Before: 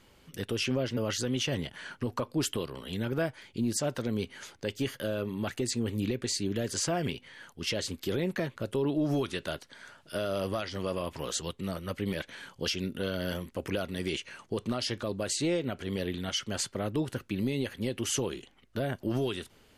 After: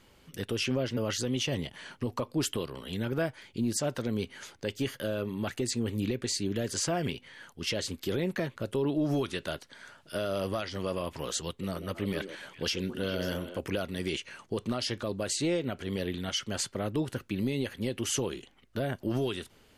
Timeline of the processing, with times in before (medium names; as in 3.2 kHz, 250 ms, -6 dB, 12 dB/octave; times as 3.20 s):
1.22–2.29 s: peaking EQ 1.5 kHz -6.5 dB 0.37 oct
11.49–13.59 s: repeats whose band climbs or falls 137 ms, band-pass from 370 Hz, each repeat 1.4 oct, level -4 dB